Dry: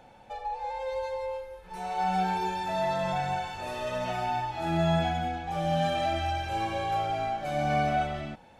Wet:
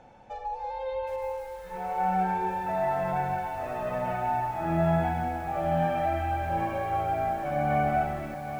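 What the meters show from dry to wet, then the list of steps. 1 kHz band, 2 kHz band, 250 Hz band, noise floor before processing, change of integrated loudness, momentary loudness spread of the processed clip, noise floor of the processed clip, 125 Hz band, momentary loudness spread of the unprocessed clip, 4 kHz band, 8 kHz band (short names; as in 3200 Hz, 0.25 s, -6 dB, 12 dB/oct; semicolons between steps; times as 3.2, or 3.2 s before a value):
+1.5 dB, -0.5 dB, +1.0 dB, -54 dBFS, +1.0 dB, 9 LU, -41 dBFS, +1.0 dB, 9 LU, -13.0 dB, n/a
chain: bell 4500 Hz -12.5 dB 1.5 oct; Schroeder reverb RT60 2.2 s, combs from 26 ms, DRR 20 dB; low-pass sweep 5800 Hz -> 2000 Hz, 0.56–1.36; dynamic EQ 1900 Hz, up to -6 dB, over -47 dBFS, Q 1.6; lo-fi delay 0.773 s, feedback 55%, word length 8-bit, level -10 dB; gain +1 dB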